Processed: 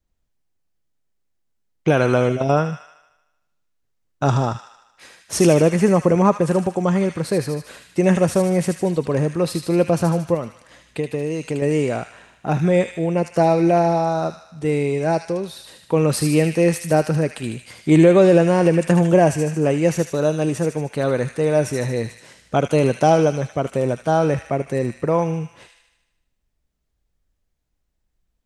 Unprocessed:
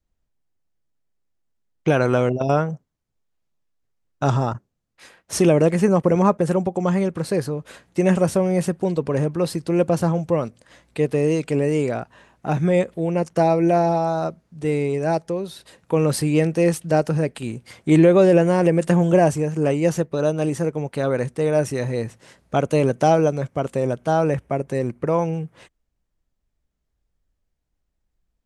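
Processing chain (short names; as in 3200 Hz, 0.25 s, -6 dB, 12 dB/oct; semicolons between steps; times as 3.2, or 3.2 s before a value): 10.34–11.62 compressor, threshold -22 dBFS, peak gain reduction 7.5 dB; on a send: thin delay 76 ms, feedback 60%, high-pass 2000 Hz, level -4 dB; on the sum: gain +1.5 dB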